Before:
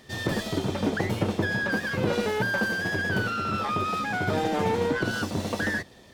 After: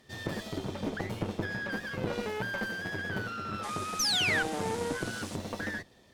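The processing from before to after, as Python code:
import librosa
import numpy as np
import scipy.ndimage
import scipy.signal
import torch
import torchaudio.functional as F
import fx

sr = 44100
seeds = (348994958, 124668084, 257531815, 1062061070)

y = fx.spec_paint(x, sr, seeds[0], shape='fall', start_s=3.99, length_s=0.44, low_hz=1400.0, high_hz=6400.0, level_db=-20.0)
y = fx.dmg_noise_band(y, sr, seeds[1], low_hz=1100.0, high_hz=10000.0, level_db=-39.0, at=(3.62, 5.35), fade=0.02)
y = fx.cheby_harmonics(y, sr, harmonics=(4,), levels_db=(-16,), full_scale_db=-9.5)
y = y * 10.0 ** (-8.5 / 20.0)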